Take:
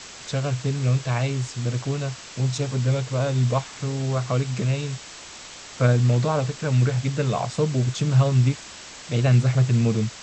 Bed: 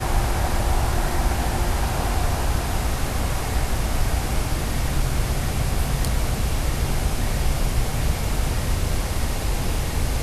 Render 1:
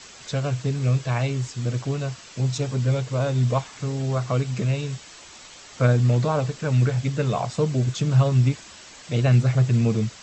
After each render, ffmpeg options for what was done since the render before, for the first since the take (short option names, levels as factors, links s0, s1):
-af "afftdn=nr=6:nf=-41"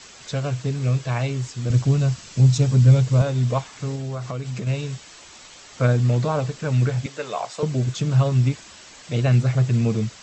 -filter_complex "[0:a]asettb=1/sr,asplit=3[s0][s1][s2];[s0]atrim=end=1.704[s3];[s1]atrim=start=1.7:end=3.22,asetpts=PTS-STARTPTS,afade=t=in:d=0.004:c=qsin,afade=t=out:st=1.516:d=0.004:c=qsin,bass=f=250:g=10,treble=f=4000:g=4[s4];[s2]atrim=start=3.216[s5];[s3][s4]acrossfade=d=0.004:c1=hsin:c2=qsin[s6];[s6][s5]acrossfade=d=0.004:c1=qsin:c2=hsin,asettb=1/sr,asplit=3[s7][s8][s9];[s7]atrim=end=3.954[s10];[s8]atrim=start=3.95:end=4.67,asetpts=PTS-STARTPTS,afade=t=in:d=0.004:c=qsin,afade=t=out:st=0.716:d=0.004:c=qsin,acompressor=threshold=0.0562:ratio=5:attack=3.2:release=140:knee=1:detection=peak[s11];[s9]atrim=start=4.666[s12];[s10][s11]acrossfade=d=0.004:c1=hsin:c2=qsin[s13];[s13][s12]acrossfade=d=0.004:c1=qsin:c2=hsin,asettb=1/sr,asplit=3[s14][s15][s16];[s14]atrim=end=7.064[s17];[s15]atrim=start=7.06:end=7.63,asetpts=PTS-STARTPTS,afade=t=in:d=0.004:c=qsin,afade=t=out:st=0.566:d=0.004:c=qsin,highpass=480[s18];[s16]atrim=start=7.626[s19];[s17][s18]acrossfade=d=0.004:c1=hsin:c2=qsin[s20];[s20][s19]acrossfade=d=0.004:c1=qsin:c2=hsin"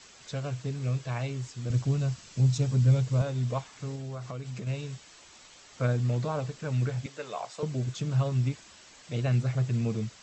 -af "volume=0.376"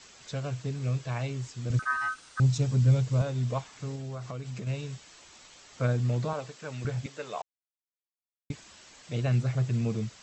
-filter_complex "[0:a]asettb=1/sr,asplit=3[s0][s1][s2];[s0]atrim=end=1.794[s3];[s1]atrim=start=1.79:end=2.4,asetpts=PTS-STARTPTS,afade=t=in:d=0.004:c=qsin,afade=t=out:st=0.606:d=0.004:c=qsin,aeval=exprs='val(0)*sin(2*PI*1400*n/s)':c=same[s4];[s2]atrim=start=2.396[s5];[s3][s4]acrossfade=d=0.004:c1=hsin:c2=qsin[s6];[s6][s5]acrossfade=d=0.004:c1=qsin:c2=hsin,asettb=1/sr,asplit=3[s7][s8][s9];[s7]atrim=end=6.334[s10];[s8]atrim=start=6.33:end=6.85,asetpts=PTS-STARTPTS,afade=t=in:d=0.004:c=qsin,afade=t=out:st=0.516:d=0.004:c=qsin,highpass=f=470:p=1[s11];[s9]atrim=start=6.846[s12];[s10][s11]acrossfade=d=0.004:c1=hsin:c2=qsin[s13];[s13][s12]acrossfade=d=0.004:c1=qsin:c2=hsin,asplit=3[s14][s15][s16];[s14]atrim=end=7.42,asetpts=PTS-STARTPTS,afade=t=out:st=7.416:d=0.004:c=hsin[s17];[s15]atrim=start=7.42:end=8.5,asetpts=PTS-STARTPTS,volume=0[s18];[s16]atrim=start=8.5,asetpts=PTS-STARTPTS,afade=t=in:d=0.004:c=hsin[s19];[s17][s18][s19]concat=n=3:v=0:a=1"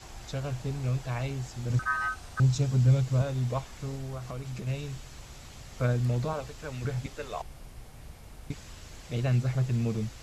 -filter_complex "[1:a]volume=0.0596[s0];[0:a][s0]amix=inputs=2:normalize=0"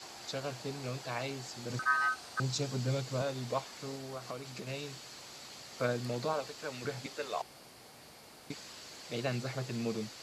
-af "highpass=270,equalizer=f=4500:w=4.3:g=8.5"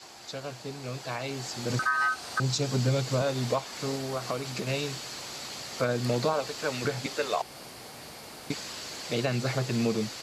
-af "alimiter=level_in=1.33:limit=0.0631:level=0:latency=1:release=249,volume=0.75,dynaudnorm=f=850:g=3:m=3.16"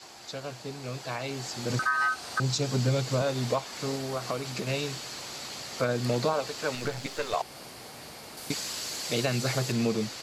-filter_complex "[0:a]asettb=1/sr,asplit=3[s0][s1][s2];[s0]atrim=end=6.754[s3];[s1]atrim=start=6.75:end=7.34,asetpts=PTS-STARTPTS,afade=t=in:d=0.004:c=qsin,afade=t=out:st=0.586:d=0.004:c=qsin,aeval=exprs='if(lt(val(0),0),0.447*val(0),val(0))':c=same[s4];[s2]atrim=start=7.336[s5];[s3][s4]acrossfade=d=0.004:c1=hsin:c2=qsin[s6];[s6][s5]acrossfade=d=0.004:c1=qsin:c2=hsin,asettb=1/sr,asplit=3[s7][s8][s9];[s7]atrim=end=8.374[s10];[s8]atrim=start=8.37:end=9.72,asetpts=PTS-STARTPTS,afade=t=in:d=0.004:c=qsin,afade=t=out:st=1.346:d=0.004:c=qsin,highshelf=f=5000:g=9.5[s11];[s9]atrim=start=9.716[s12];[s10][s11]acrossfade=d=0.004:c1=hsin:c2=qsin[s13];[s13][s12]acrossfade=d=0.004:c1=qsin:c2=hsin"